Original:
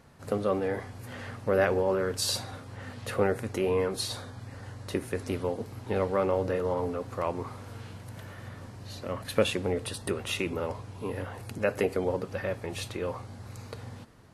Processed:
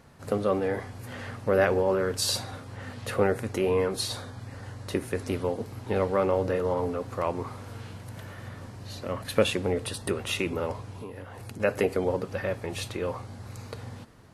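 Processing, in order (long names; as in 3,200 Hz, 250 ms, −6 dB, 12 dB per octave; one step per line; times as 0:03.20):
0:10.97–0:11.60: downward compressor 6 to 1, threshold −39 dBFS, peak gain reduction 9.5 dB
level +2 dB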